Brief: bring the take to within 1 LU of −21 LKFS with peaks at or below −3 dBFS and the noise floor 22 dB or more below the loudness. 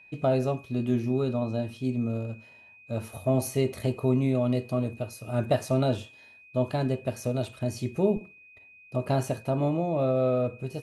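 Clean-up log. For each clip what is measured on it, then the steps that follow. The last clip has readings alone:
interfering tone 2,500 Hz; level of the tone −51 dBFS; integrated loudness −28.5 LKFS; sample peak −11.5 dBFS; target loudness −21.0 LKFS
→ notch filter 2,500 Hz, Q 30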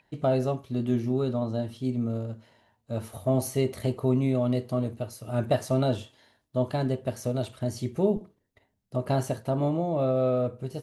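interfering tone none found; integrated loudness −28.5 LKFS; sample peak −11.5 dBFS; target loudness −21.0 LKFS
→ level +7.5 dB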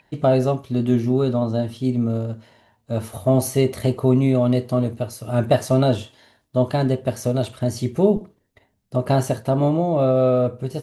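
integrated loudness −21.0 LKFS; sample peak −4.0 dBFS; background noise floor −67 dBFS

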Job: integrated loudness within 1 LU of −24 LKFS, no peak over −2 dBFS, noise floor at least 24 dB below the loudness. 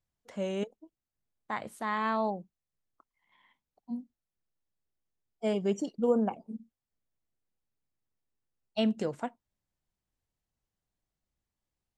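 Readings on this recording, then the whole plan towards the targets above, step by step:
integrated loudness −33.0 LKFS; sample peak −15.0 dBFS; target loudness −24.0 LKFS
→ level +9 dB

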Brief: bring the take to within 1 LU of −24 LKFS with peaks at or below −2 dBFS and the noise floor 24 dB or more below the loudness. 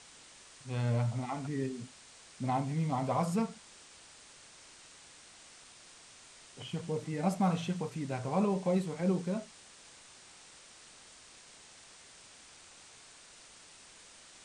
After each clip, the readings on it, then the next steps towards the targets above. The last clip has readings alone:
background noise floor −56 dBFS; target noise floor −58 dBFS; integrated loudness −34.0 LKFS; sample peak −17.5 dBFS; target loudness −24.0 LKFS
→ broadband denoise 6 dB, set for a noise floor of −56 dBFS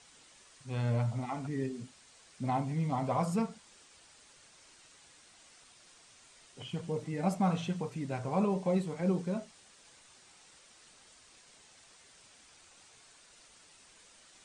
background noise floor −60 dBFS; integrated loudness −34.0 LKFS; sample peak −17.5 dBFS; target loudness −24.0 LKFS
→ level +10 dB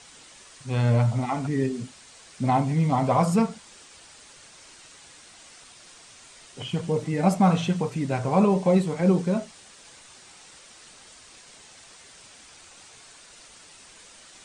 integrated loudness −24.0 LKFS; sample peak −7.5 dBFS; background noise floor −50 dBFS

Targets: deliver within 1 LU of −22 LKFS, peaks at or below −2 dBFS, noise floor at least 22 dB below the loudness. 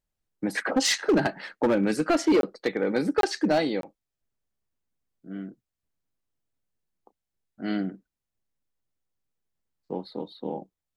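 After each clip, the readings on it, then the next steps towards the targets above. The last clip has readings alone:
share of clipped samples 0.7%; peaks flattened at −16.0 dBFS; number of dropouts 3; longest dropout 22 ms; integrated loudness −26.5 LKFS; sample peak −16.0 dBFS; target loudness −22.0 LKFS
→ clipped peaks rebuilt −16 dBFS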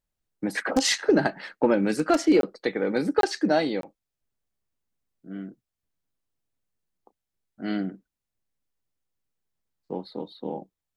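share of clipped samples 0.0%; number of dropouts 3; longest dropout 22 ms
→ repair the gap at 0:02.41/0:03.21/0:03.81, 22 ms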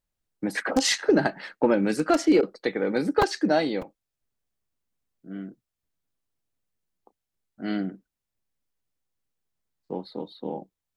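number of dropouts 0; integrated loudness −25.0 LKFS; sample peak −7.5 dBFS; target loudness −22.0 LKFS
→ level +3 dB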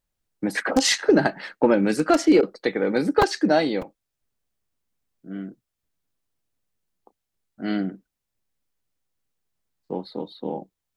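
integrated loudness −22.0 LKFS; sample peak −4.5 dBFS; background noise floor −82 dBFS

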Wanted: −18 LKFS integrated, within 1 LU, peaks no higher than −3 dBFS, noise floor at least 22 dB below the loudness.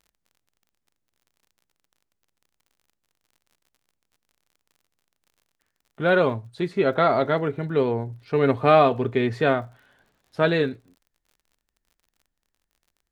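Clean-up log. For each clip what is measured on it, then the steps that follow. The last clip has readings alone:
crackle rate 46 per second; integrated loudness −22.0 LKFS; sample peak −5.0 dBFS; target loudness −18.0 LKFS
→ click removal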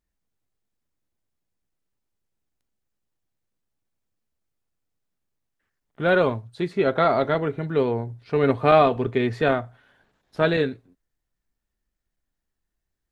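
crackle rate 0.15 per second; integrated loudness −22.5 LKFS; sample peak −5.0 dBFS; target loudness −18.0 LKFS
→ level +4.5 dB
brickwall limiter −3 dBFS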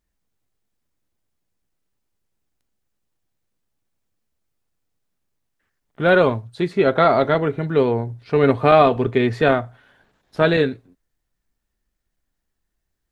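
integrated loudness −18.0 LKFS; sample peak −3.0 dBFS; background noise floor −77 dBFS

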